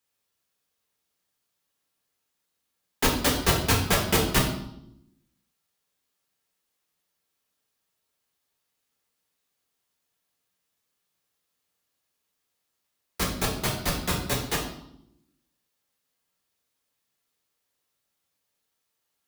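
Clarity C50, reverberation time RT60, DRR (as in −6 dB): 5.5 dB, 0.75 s, −3.0 dB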